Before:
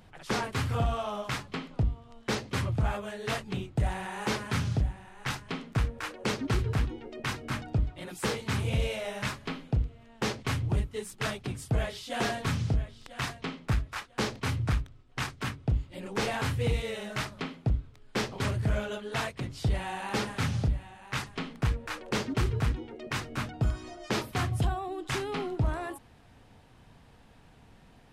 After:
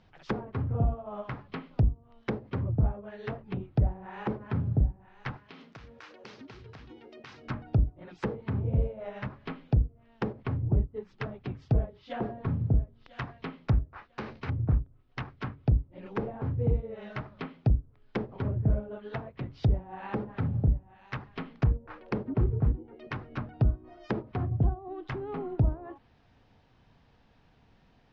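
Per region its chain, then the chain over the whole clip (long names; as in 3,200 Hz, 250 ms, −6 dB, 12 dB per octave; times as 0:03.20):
0:05.37–0:07.48: high-pass filter 180 Hz 6 dB per octave + downward compressor 12 to 1, threshold −38 dBFS + high-shelf EQ 6,200 Hz +5 dB
0:13.83–0:14.49: parametric band 3,300 Hz −3.5 dB 0.21 octaves + downward compressor 10 to 1, threshold −30 dBFS + double-tracking delay 13 ms −8 dB
whole clip: Butterworth low-pass 5,900 Hz; treble cut that deepens with the level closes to 540 Hz, closed at −27.5 dBFS; expander for the loud parts 1.5 to 1, over −43 dBFS; level +4 dB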